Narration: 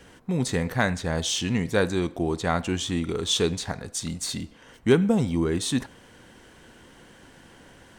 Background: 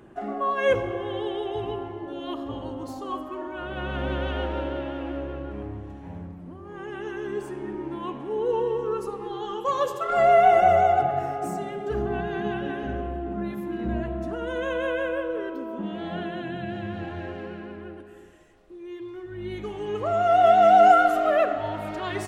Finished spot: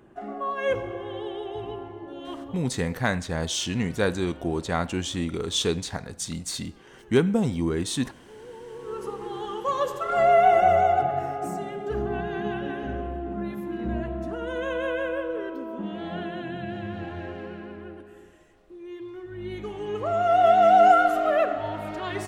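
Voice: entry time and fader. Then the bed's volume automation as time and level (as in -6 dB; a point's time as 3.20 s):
2.25 s, -1.5 dB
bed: 2.42 s -4 dB
2.78 s -18.5 dB
8.61 s -18.5 dB
9.08 s -1 dB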